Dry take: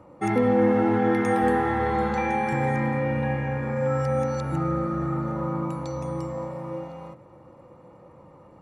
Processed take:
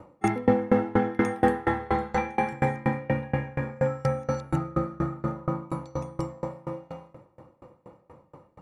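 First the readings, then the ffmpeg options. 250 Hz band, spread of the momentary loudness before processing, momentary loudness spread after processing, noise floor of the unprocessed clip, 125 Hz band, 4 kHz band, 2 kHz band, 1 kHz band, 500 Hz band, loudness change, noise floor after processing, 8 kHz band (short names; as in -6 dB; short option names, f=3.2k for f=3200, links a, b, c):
-3.0 dB, 12 LU, 11 LU, -51 dBFS, -3.0 dB, -2.5 dB, -3.0 dB, -3.0 dB, -3.0 dB, -3.0 dB, -64 dBFS, -2.0 dB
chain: -af "aeval=exprs='val(0)*pow(10,-27*if(lt(mod(4.2*n/s,1),2*abs(4.2)/1000),1-mod(4.2*n/s,1)/(2*abs(4.2)/1000),(mod(4.2*n/s,1)-2*abs(4.2)/1000)/(1-2*abs(4.2)/1000))/20)':c=same,volume=5dB"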